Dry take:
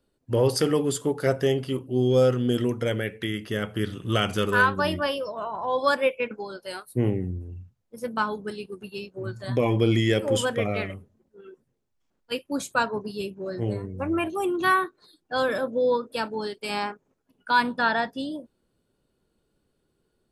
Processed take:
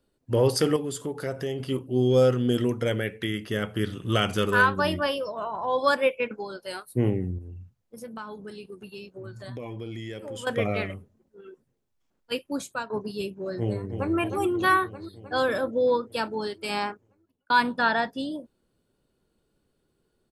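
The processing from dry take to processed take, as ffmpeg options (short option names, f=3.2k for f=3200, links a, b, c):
-filter_complex "[0:a]asettb=1/sr,asplit=3[a][b][c];[a]atrim=end=0.764[d];[b]atrim=start=0.76:end=1.6,asetpts=PTS-STARTPTS,afade=t=in:d=0.004:c=qsin,afade=t=out:st=0.836:d=0.004:c=qsin,acompressor=threshold=-32dB:ratio=2:attack=3.2:release=140:knee=1:detection=peak[e];[c]atrim=start=1.596[f];[d][e]acrossfade=d=0.004:c1=hsin:c2=qsin[g];[g][f]acrossfade=d=0.004:c1=qsin:c2=hsin,asettb=1/sr,asplit=3[h][i][j];[h]atrim=end=7.384[k];[i]atrim=start=7.38:end=10.47,asetpts=PTS-STARTPTS,afade=t=in:d=0.004:c=qsin,afade=t=out:st=3.086:d=0.004:c=qsin,acompressor=threshold=-38dB:ratio=3:attack=3.2:release=140:knee=1:detection=peak[l];[j]atrim=start=10.466[m];[k][l]acrossfade=d=0.004:c1=hsin:c2=qsin[n];[n][m]acrossfade=d=0.004:c1=qsin:c2=hsin,asplit=2[o][p];[p]afade=t=in:st=13.58:d=0.01,afade=t=out:st=14.15:d=0.01,aecho=0:1:310|620|930|1240|1550|1860|2170|2480|2790|3100|3410:0.421697|0.295188|0.206631|0.144642|0.101249|0.0708745|0.0496122|0.0347285|0.02431|0.017017|0.0119119[q];[o][q]amix=inputs=2:normalize=0,asplit=3[r][s][t];[r]atrim=end=12.9,asetpts=PTS-STARTPTS,afade=t=out:st=12.44:d=0.46:silence=0.177828[u];[s]atrim=start=12.9:end=17.5,asetpts=PTS-STARTPTS,afade=t=in:d=0.004:c=hsin:silence=0.177828,afade=t=out:st=3.99:d=0.61[v];[t]atrim=start=17.5,asetpts=PTS-STARTPTS,afade=t=in:d=0.004:c=hsin[w];[u][v][w]concat=n=3:v=0:a=1"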